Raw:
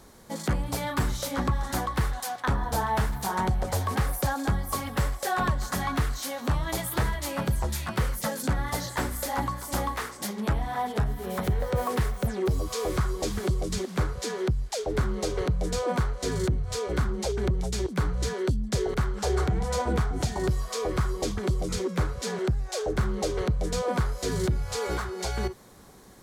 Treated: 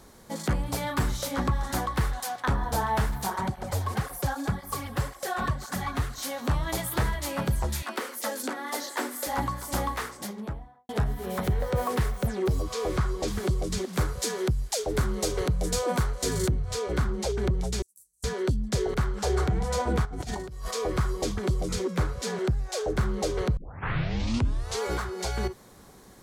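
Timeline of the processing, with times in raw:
0:03.30–0:06.18: through-zero flanger with one copy inverted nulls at 1.9 Hz, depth 7.2 ms
0:07.82–0:09.27: Chebyshev high-pass filter 240 Hz, order 5
0:09.99–0:10.89: fade out and dull
0:12.62–0:13.28: high-shelf EQ 9,100 Hz −10 dB
0:13.93–0:16.51: high-shelf EQ 6,700 Hz +11.5 dB
0:17.82–0:18.24: inverse Chebyshev high-pass filter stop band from 3,000 Hz, stop band 60 dB
0:20.05–0:20.71: compressor whose output falls as the input rises −35 dBFS
0:23.57: tape start 1.26 s

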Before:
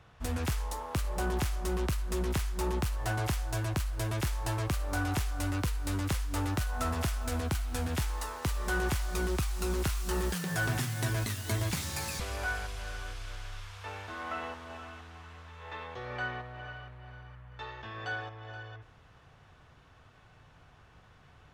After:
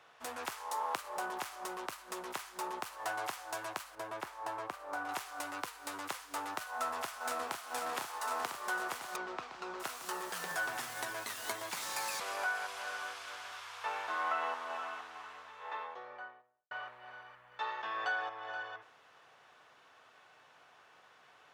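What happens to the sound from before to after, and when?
0:03.95–0:05.09: high-shelf EQ 2,400 Hz −11.5 dB
0:06.70–0:07.67: delay throw 500 ms, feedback 75%, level −3 dB
0:09.16–0:09.80: high-frequency loss of the air 170 metres
0:15.22–0:16.71: fade out and dull
whole clip: downward compressor, threshold −35 dBFS; high-pass filter 510 Hz 12 dB per octave; dynamic equaliser 1,000 Hz, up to +7 dB, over −57 dBFS, Q 1; level +1 dB

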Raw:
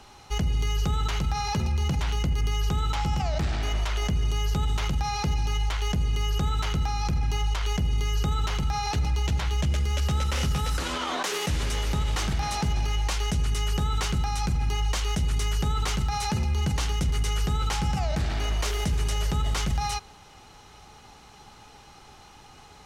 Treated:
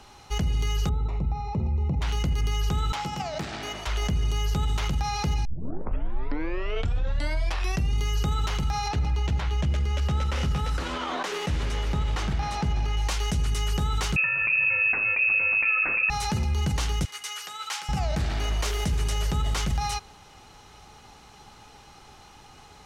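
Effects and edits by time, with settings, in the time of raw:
0:00.89–0:02.02: moving average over 28 samples
0:02.92–0:03.87: high-pass filter 180 Hz
0:05.45: tape start 2.51 s
0:08.88–0:12.97: low-pass filter 2,800 Hz 6 dB per octave
0:14.16–0:16.10: voice inversion scrambler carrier 2,600 Hz
0:17.05–0:17.89: high-pass filter 1,100 Hz

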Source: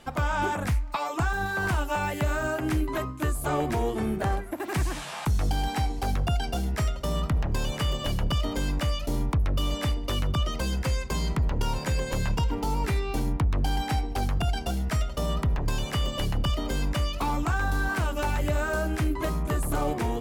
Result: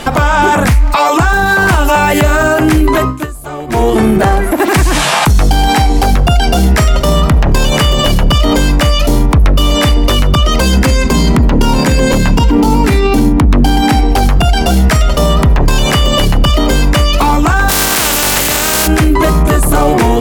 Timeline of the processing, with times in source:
0:02.86–0:04.08: duck −23.5 dB, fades 0.41 s
0:10.77–0:14.01: parametric band 250 Hz +10.5 dB
0:17.68–0:18.86: compressing power law on the bin magnitudes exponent 0.31
whole clip: parametric band 90 Hz −6 dB 0.8 octaves; boost into a limiter +28.5 dB; level −1 dB

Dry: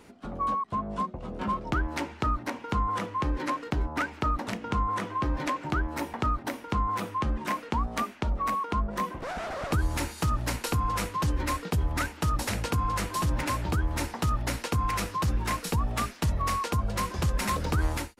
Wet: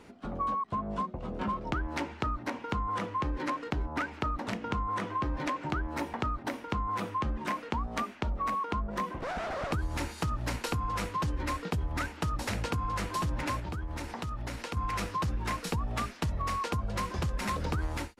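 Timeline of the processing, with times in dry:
0:13.59–0:14.77: downward compressor 5 to 1, threshold −33 dBFS
whole clip: high-shelf EQ 8,600 Hz −10.5 dB; downward compressor, threshold −28 dBFS

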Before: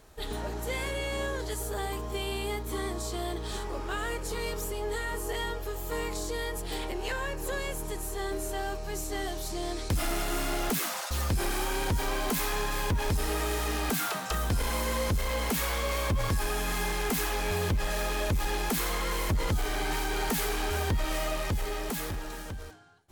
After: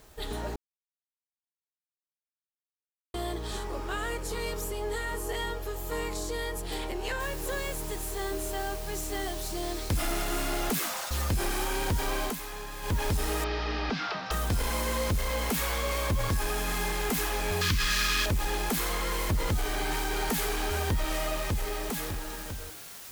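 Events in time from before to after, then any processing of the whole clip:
0:00.56–0:03.14: silence
0:07.20: noise floor change −62 dB −45 dB
0:12.24–0:12.94: duck −9 dB, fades 0.13 s
0:13.44–0:14.31: elliptic low-pass filter 5,200 Hz, stop band 50 dB
0:17.61–0:18.26: drawn EQ curve 270 Hz 0 dB, 730 Hz −17 dB, 1,100 Hz +5 dB, 4,900 Hz +12 dB, 8,800 Hz +3 dB

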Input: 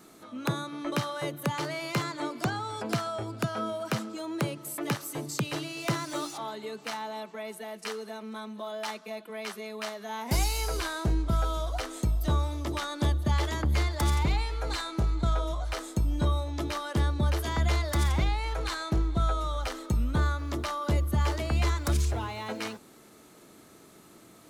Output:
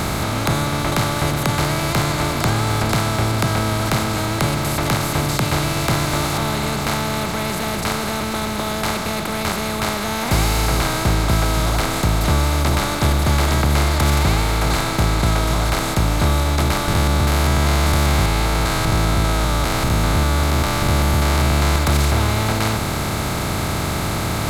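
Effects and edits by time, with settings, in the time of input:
0:16.88–0:21.76: spectrum averaged block by block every 200 ms
whole clip: compressor on every frequency bin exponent 0.2; parametric band 99 Hz +5 dB 1.2 octaves; level +2 dB

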